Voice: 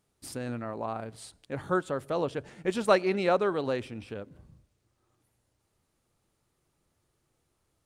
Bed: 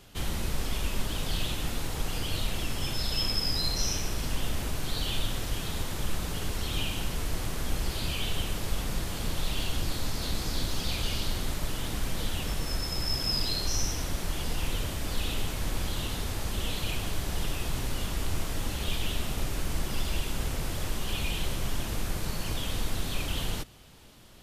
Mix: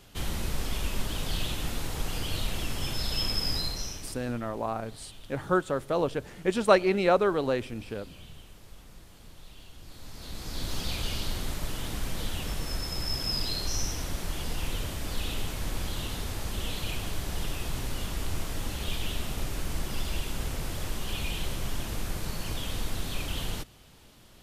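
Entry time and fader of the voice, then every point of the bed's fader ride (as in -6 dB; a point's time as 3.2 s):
3.80 s, +2.5 dB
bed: 3.55 s -0.5 dB
4.42 s -19 dB
9.76 s -19 dB
10.73 s -1.5 dB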